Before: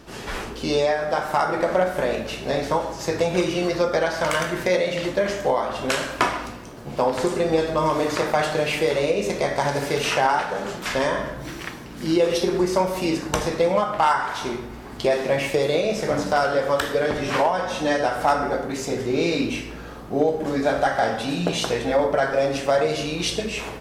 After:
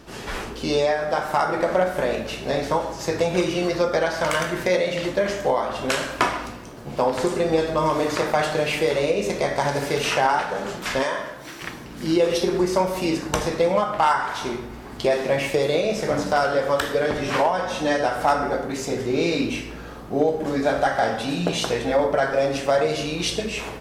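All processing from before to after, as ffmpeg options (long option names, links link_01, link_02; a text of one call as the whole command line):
ffmpeg -i in.wav -filter_complex "[0:a]asettb=1/sr,asplit=3[link_01][link_02][link_03];[link_01]atrim=end=11.034[link_04];[link_02]atrim=start=11.03:end=11.62,asetpts=PTS-STARTPTS,afade=type=in:duration=0.004:curve=qsin,afade=type=out:start_time=0.586:duration=0.004:curve=qsin,highpass=frequency=120:poles=1,lowshelf=frequency=360:gain=-10.5[link_05];[link_03]atrim=start=11.616[link_06];[link_04][link_05]acrossfade=duration=0.004:curve1=hsin:curve2=qsin[link_07];[link_07][link_06]acrossfade=duration=0.004:curve1=qsin:curve2=hsin" out.wav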